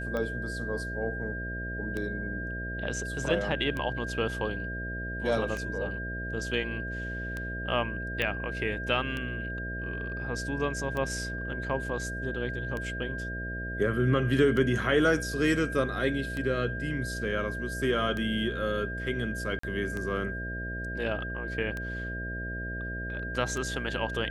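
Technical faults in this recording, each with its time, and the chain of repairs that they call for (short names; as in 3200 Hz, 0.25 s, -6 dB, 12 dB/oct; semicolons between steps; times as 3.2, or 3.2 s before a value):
buzz 60 Hz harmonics 11 -37 dBFS
tick 33 1/3 rpm -21 dBFS
tone 1600 Hz -36 dBFS
8.22 pop -16 dBFS
19.59–19.63 gap 44 ms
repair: de-click; de-hum 60 Hz, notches 11; notch 1600 Hz, Q 30; interpolate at 19.59, 44 ms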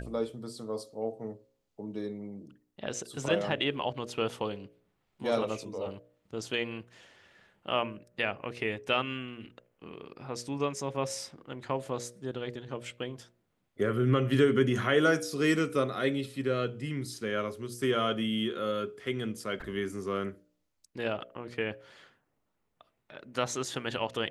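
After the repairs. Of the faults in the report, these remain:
none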